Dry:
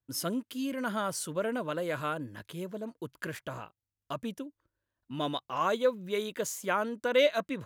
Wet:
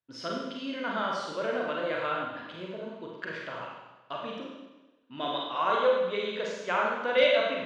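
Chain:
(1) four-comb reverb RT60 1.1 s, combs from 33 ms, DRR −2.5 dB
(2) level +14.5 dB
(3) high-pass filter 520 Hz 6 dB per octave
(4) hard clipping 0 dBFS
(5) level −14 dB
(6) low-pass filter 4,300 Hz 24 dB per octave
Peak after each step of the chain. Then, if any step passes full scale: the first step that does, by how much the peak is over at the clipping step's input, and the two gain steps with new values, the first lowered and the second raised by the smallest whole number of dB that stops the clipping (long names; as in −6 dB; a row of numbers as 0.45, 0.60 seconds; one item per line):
−9.0, +5.5, +3.5, 0.0, −14.0, −13.0 dBFS
step 2, 3.5 dB
step 2 +10.5 dB, step 5 −10 dB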